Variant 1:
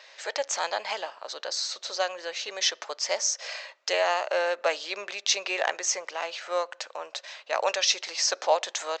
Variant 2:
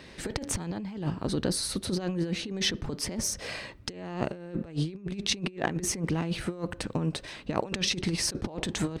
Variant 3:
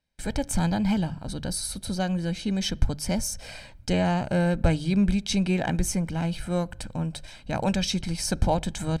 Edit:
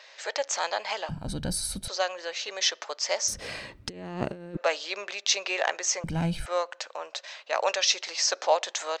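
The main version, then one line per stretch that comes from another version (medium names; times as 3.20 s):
1
1.09–1.88 s: from 3
3.28–4.57 s: from 2
6.04–6.46 s: from 3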